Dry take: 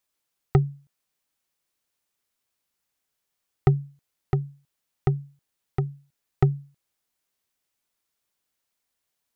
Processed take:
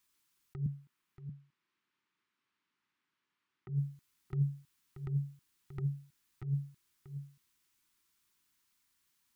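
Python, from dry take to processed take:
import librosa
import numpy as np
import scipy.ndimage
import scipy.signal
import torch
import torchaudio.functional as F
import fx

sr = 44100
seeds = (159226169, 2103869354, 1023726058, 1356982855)

y = fx.band_shelf(x, sr, hz=590.0, db=-14.0, octaves=1.0)
y = fx.over_compress(y, sr, threshold_db=-31.0, ratio=-1.0)
y = fx.bandpass_edges(y, sr, low_hz=170.0, high_hz=2600.0, at=(0.66, 3.69))
y = y + 10.0 ** (-10.0 / 20.0) * np.pad(y, (int(632 * sr / 1000.0), 0))[:len(y)]
y = y * 10.0 ** (-3.5 / 20.0)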